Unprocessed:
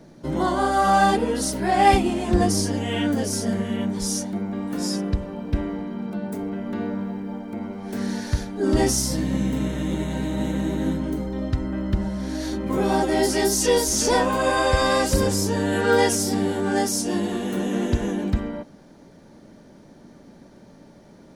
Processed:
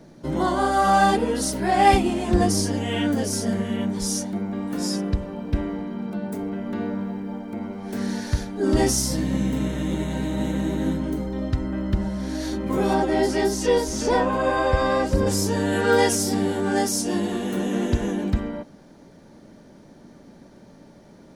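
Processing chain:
0:12.93–0:15.26: low-pass filter 3,300 Hz → 1,300 Hz 6 dB per octave

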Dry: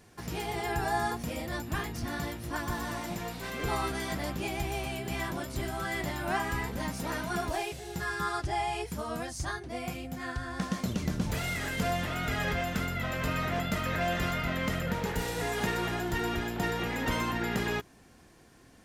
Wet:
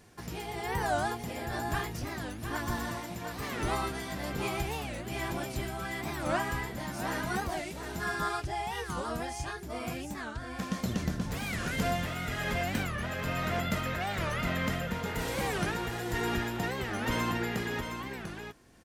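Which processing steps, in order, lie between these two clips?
amplitude tremolo 1.1 Hz, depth 38%
on a send: single-tap delay 711 ms −7 dB
on the sum: wow of a warped record 45 rpm, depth 250 cents

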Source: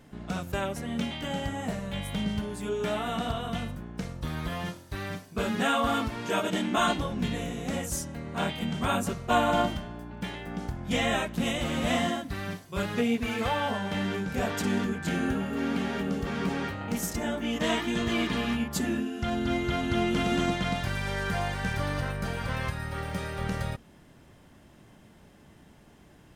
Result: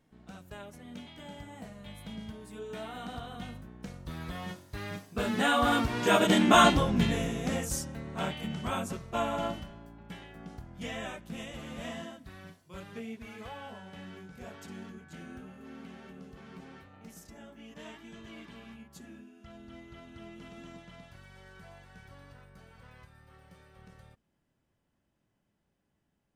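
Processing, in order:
source passing by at 0:06.50, 13 m/s, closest 7.5 metres
level +6 dB

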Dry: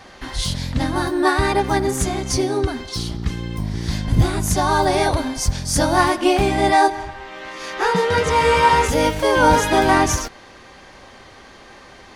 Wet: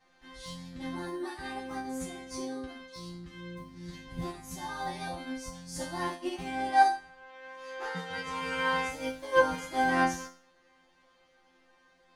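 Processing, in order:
resonators tuned to a chord F3 fifth, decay 0.46 s
expander for the loud parts 1.5 to 1, over −45 dBFS
level +5 dB

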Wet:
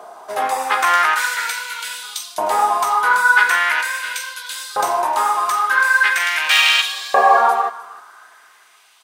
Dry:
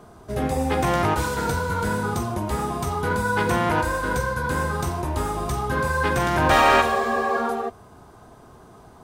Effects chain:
wave folding −8.5 dBFS
single-tap delay 307 ms −19 dB
auto-filter high-pass saw up 0.42 Hz 660–4,100 Hz
level +7.5 dB

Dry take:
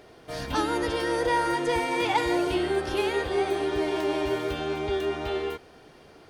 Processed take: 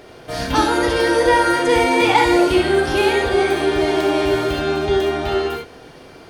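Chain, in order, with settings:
reverb whose tail is shaped and stops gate 90 ms rising, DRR 2 dB
level +8.5 dB

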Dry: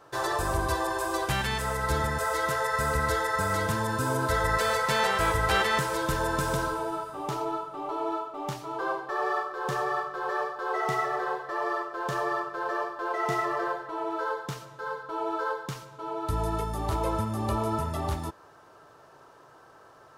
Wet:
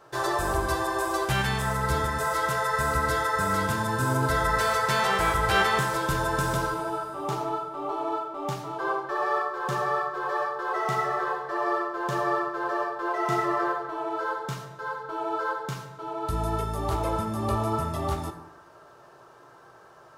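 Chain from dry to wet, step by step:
on a send: high-pass filter 120 Hz 12 dB per octave + convolution reverb RT60 1.0 s, pre-delay 4 ms, DRR 3.5 dB

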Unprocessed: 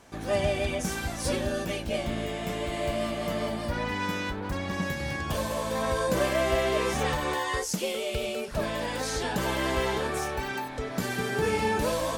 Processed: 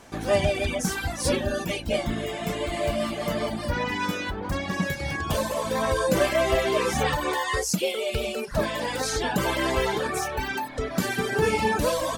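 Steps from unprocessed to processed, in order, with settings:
reverb reduction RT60 1.1 s
mains-hum notches 60/120 Hz
level +5.5 dB

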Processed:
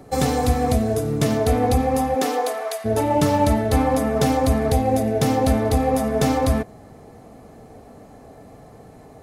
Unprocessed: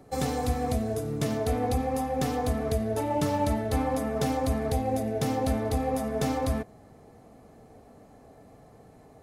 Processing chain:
0:02.14–0:02.84: high-pass filter 220 Hz → 840 Hz 24 dB per octave
level +8.5 dB

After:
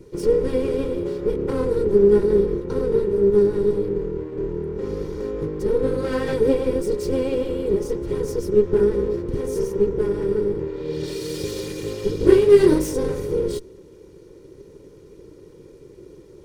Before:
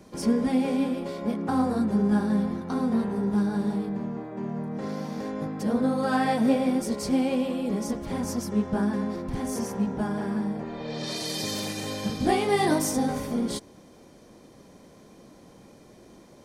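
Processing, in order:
lower of the sound and its delayed copy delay 2.1 ms
low shelf with overshoot 530 Hz +9.5 dB, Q 3
level −2.5 dB

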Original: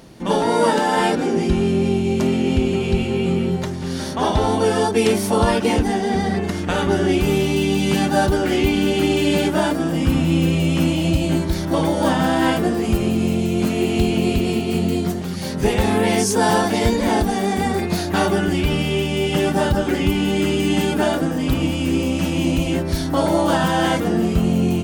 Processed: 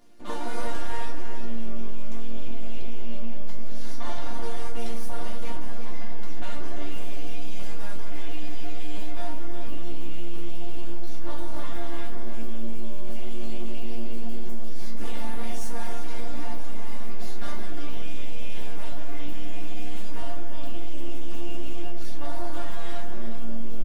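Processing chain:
notch filter 430 Hz, Q 13
wrong playback speed 24 fps film run at 25 fps
mains-hum notches 60/120/180/240 Hz
half-wave rectification
resonators tuned to a chord A#3 major, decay 0.22 s
slap from a distant wall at 61 metres, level −7 dB
on a send at −14 dB: convolution reverb RT60 2.4 s, pre-delay 5 ms
on the sum: brickwall limiter −16.5 dBFS, peak gain reduction 6.5 dB
level +5 dB

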